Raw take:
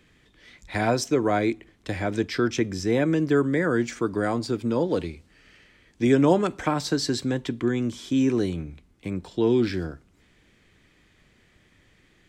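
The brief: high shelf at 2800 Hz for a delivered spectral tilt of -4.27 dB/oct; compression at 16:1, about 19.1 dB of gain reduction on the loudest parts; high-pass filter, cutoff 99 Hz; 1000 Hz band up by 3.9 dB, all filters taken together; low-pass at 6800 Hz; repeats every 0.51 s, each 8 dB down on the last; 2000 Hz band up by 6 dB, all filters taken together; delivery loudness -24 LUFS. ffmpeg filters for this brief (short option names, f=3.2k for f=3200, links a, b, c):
-af "highpass=99,lowpass=6.8k,equalizer=f=1k:t=o:g=3.5,equalizer=f=2k:t=o:g=3.5,highshelf=f=2.8k:g=8,acompressor=threshold=-32dB:ratio=16,aecho=1:1:510|1020|1530|2040|2550:0.398|0.159|0.0637|0.0255|0.0102,volume=12.5dB"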